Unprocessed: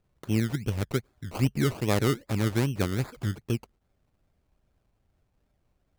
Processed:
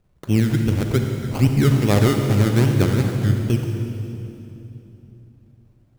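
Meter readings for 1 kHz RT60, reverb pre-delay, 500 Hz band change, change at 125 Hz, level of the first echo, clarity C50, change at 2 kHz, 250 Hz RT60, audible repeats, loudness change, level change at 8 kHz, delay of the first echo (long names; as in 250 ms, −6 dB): 2.7 s, 37 ms, +8.0 dB, +11.0 dB, no echo audible, 4.0 dB, +6.5 dB, 3.8 s, no echo audible, +9.5 dB, +6.0 dB, no echo audible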